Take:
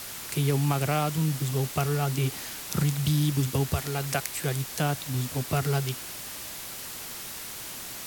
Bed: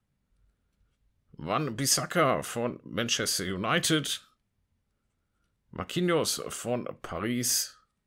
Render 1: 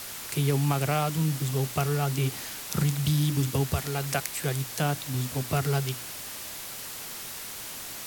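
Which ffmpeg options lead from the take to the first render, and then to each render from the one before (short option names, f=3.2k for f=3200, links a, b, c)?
-af "bandreject=f=60:t=h:w=4,bandreject=f=120:t=h:w=4,bandreject=f=180:t=h:w=4,bandreject=f=240:t=h:w=4,bandreject=f=300:t=h:w=4,bandreject=f=360:t=h:w=4"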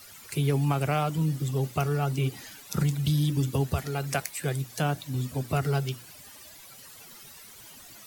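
-af "afftdn=nr=14:nf=-39"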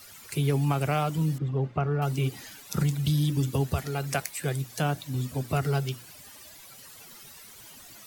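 -filter_complex "[0:a]asettb=1/sr,asplit=3[a][b][c];[a]atrim=end=1.384[d];[b]atrim=start=1.38:end=2.02,asetpts=PTS-STARTPTS,afade=t=in:d=0.004:c=qsin,afade=t=out:st=0.636:d=0.004:c=qsin,lowpass=1.8k[e];[c]atrim=start=2.016[f];[d][e]acrossfade=d=0.004:c1=hsin:c2=qsin[g];[g][f]acrossfade=d=0.004:c1=qsin:c2=hsin"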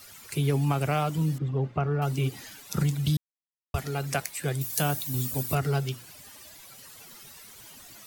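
-filter_complex "[0:a]asettb=1/sr,asplit=3[a][b][c];[a]atrim=end=4.614[d];[b]atrim=start=4.61:end=5.55,asetpts=PTS-STARTPTS,afade=t=in:d=0.004:c=qsin,afade=t=out:st=0.936:d=0.004:c=qsin,aemphasis=mode=production:type=50fm[e];[c]atrim=start=5.546[f];[d][e]acrossfade=d=0.004:c1=hsin:c2=qsin[g];[g][f]acrossfade=d=0.004:c1=qsin:c2=hsin,asplit=3[h][i][j];[h]atrim=end=3.17,asetpts=PTS-STARTPTS,afade=t=out:st=3.166:d=0.004:c=hsin[k];[i]atrim=start=3.17:end=3.74,asetpts=PTS-STARTPTS,volume=0[l];[j]atrim=start=3.74,asetpts=PTS-STARTPTS,afade=t=in:d=0.004:c=hsin[m];[k][l][m]concat=n=3:v=0:a=1"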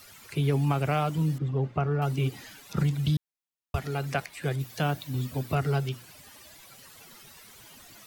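-filter_complex "[0:a]acrossover=split=4300[a][b];[b]acompressor=threshold=-49dB:ratio=4:attack=1:release=60[c];[a][c]amix=inputs=2:normalize=0"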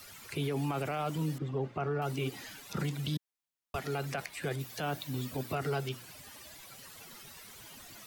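-filter_complex "[0:a]acrossover=split=210[a][b];[a]acompressor=threshold=-40dB:ratio=6[c];[c][b]amix=inputs=2:normalize=0,alimiter=level_in=1dB:limit=-24dB:level=0:latency=1:release=21,volume=-1dB"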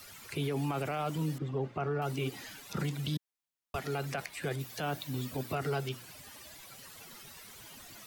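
-af anull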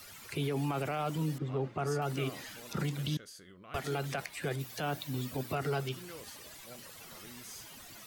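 -filter_complex "[1:a]volume=-22.5dB[a];[0:a][a]amix=inputs=2:normalize=0"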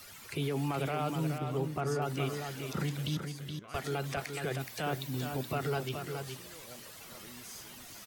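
-af "aecho=1:1:422:0.473"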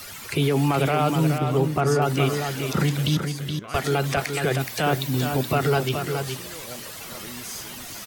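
-af "volume=12dB"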